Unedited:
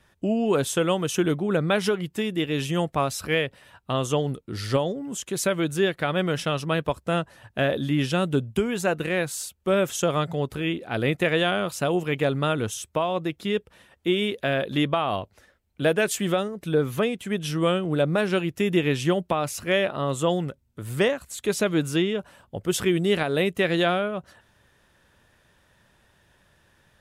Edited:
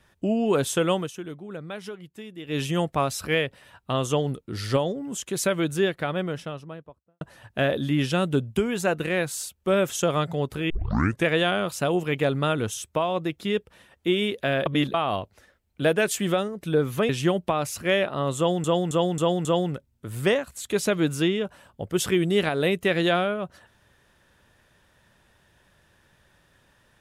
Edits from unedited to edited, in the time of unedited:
0.98–2.57 dip -13.5 dB, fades 0.13 s
5.62–7.21 studio fade out
10.7 tape start 0.56 s
14.66–14.94 reverse
17.09–18.91 cut
20.19–20.46 loop, 5 plays

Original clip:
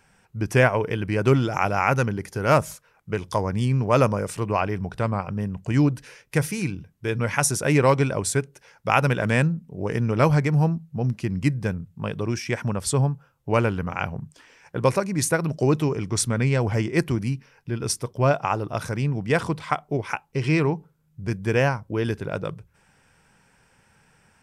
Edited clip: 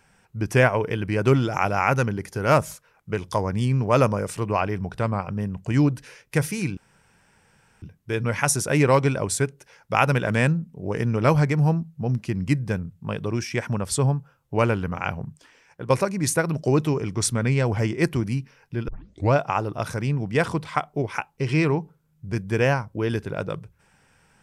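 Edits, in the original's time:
6.77 insert room tone 1.05 s
14.16–14.85 fade out, to -7.5 dB
17.83 tape start 0.45 s

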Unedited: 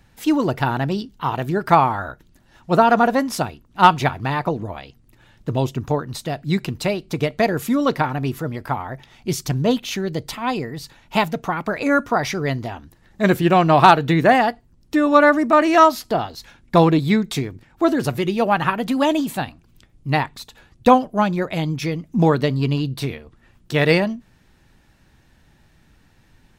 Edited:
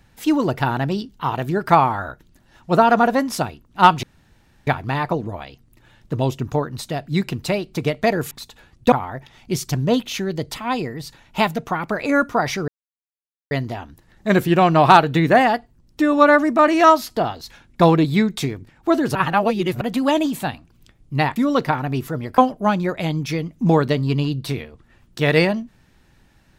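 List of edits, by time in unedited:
4.03 insert room tone 0.64 s
7.67–8.69 swap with 20.3–20.91
12.45 insert silence 0.83 s
18.09–18.75 reverse

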